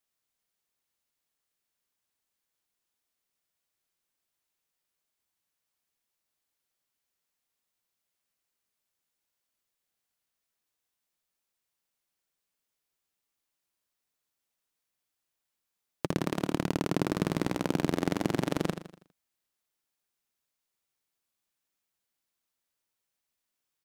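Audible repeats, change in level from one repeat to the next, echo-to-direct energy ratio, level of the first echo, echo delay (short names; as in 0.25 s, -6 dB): 4, -7.0 dB, -9.0 dB, -10.0 dB, 81 ms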